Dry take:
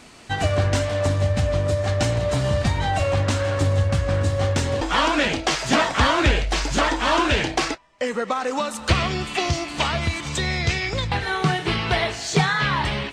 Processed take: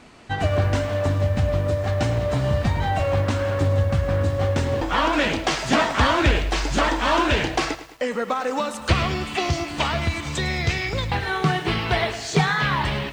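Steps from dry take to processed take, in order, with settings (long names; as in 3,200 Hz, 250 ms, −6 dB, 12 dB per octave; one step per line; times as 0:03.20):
high-shelf EQ 3,900 Hz −11 dB, from 0:05.13 −4.5 dB
feedback echo at a low word length 106 ms, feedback 55%, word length 7 bits, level −14 dB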